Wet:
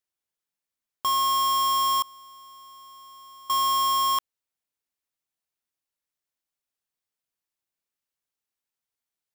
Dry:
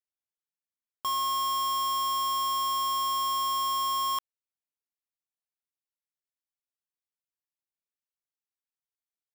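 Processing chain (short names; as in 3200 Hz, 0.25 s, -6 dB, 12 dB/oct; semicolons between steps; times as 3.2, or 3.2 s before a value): 2.02–3.5 expander -16 dBFS; gain +5.5 dB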